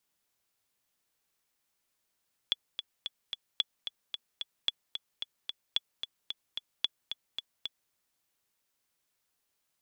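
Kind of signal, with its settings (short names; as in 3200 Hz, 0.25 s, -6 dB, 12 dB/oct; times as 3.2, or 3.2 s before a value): metronome 222 bpm, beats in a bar 4, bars 5, 3410 Hz, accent 8.5 dB -13.5 dBFS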